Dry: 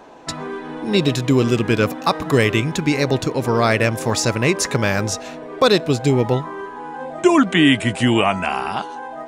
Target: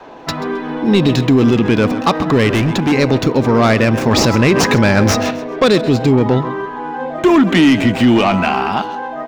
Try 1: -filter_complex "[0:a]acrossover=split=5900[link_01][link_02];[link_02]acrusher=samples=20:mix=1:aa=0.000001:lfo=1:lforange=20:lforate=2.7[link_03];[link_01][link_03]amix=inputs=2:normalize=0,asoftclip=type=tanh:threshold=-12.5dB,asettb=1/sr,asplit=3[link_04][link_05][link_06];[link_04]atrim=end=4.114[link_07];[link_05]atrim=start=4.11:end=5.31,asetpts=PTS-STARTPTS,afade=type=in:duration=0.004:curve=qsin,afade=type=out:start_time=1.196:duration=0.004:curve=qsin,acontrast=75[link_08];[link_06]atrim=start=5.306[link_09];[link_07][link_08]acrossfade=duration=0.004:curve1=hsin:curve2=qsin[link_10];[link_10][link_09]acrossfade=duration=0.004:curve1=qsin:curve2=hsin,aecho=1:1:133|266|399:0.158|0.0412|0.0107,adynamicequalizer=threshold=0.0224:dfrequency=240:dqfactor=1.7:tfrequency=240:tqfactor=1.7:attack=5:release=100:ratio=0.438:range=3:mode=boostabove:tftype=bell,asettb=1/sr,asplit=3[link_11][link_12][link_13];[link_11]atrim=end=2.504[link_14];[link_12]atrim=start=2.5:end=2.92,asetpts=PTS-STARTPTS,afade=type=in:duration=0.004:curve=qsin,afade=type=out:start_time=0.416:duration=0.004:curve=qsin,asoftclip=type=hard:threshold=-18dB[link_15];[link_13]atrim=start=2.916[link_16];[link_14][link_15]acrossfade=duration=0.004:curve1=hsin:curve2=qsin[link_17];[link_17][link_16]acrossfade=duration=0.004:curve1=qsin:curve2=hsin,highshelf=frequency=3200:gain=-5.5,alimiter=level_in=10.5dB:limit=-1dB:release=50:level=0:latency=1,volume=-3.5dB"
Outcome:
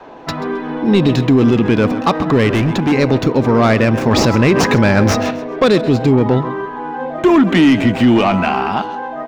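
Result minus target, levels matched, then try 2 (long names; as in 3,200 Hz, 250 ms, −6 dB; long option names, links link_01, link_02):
8,000 Hz band −3.5 dB
-filter_complex "[0:a]acrossover=split=5900[link_01][link_02];[link_02]acrusher=samples=20:mix=1:aa=0.000001:lfo=1:lforange=20:lforate=2.7[link_03];[link_01][link_03]amix=inputs=2:normalize=0,asoftclip=type=tanh:threshold=-12.5dB,asettb=1/sr,asplit=3[link_04][link_05][link_06];[link_04]atrim=end=4.114[link_07];[link_05]atrim=start=4.11:end=5.31,asetpts=PTS-STARTPTS,afade=type=in:duration=0.004:curve=qsin,afade=type=out:start_time=1.196:duration=0.004:curve=qsin,acontrast=75[link_08];[link_06]atrim=start=5.306[link_09];[link_07][link_08]acrossfade=duration=0.004:curve1=hsin:curve2=qsin[link_10];[link_10][link_09]acrossfade=duration=0.004:curve1=qsin:curve2=hsin,aecho=1:1:133|266|399:0.158|0.0412|0.0107,adynamicequalizer=threshold=0.0224:dfrequency=240:dqfactor=1.7:tfrequency=240:tqfactor=1.7:attack=5:release=100:ratio=0.438:range=3:mode=boostabove:tftype=bell,asettb=1/sr,asplit=3[link_11][link_12][link_13];[link_11]atrim=end=2.504[link_14];[link_12]atrim=start=2.5:end=2.92,asetpts=PTS-STARTPTS,afade=type=in:duration=0.004:curve=qsin,afade=type=out:start_time=0.416:duration=0.004:curve=qsin,asoftclip=type=hard:threshold=-18dB[link_15];[link_13]atrim=start=2.916[link_16];[link_14][link_15]acrossfade=duration=0.004:curve1=hsin:curve2=qsin[link_17];[link_17][link_16]acrossfade=duration=0.004:curve1=qsin:curve2=hsin,alimiter=level_in=10.5dB:limit=-1dB:release=50:level=0:latency=1,volume=-3.5dB"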